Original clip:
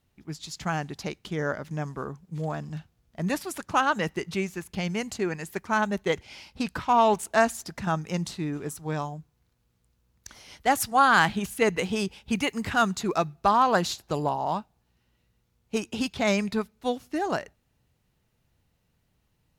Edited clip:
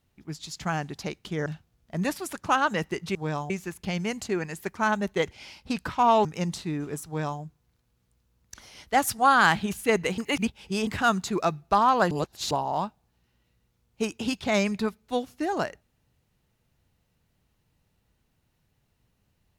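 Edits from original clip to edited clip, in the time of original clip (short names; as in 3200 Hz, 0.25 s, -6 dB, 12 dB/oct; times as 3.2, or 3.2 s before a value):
1.46–2.71 cut
7.15–7.98 cut
8.79–9.14 copy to 4.4
11.91–12.6 reverse
13.84–14.24 reverse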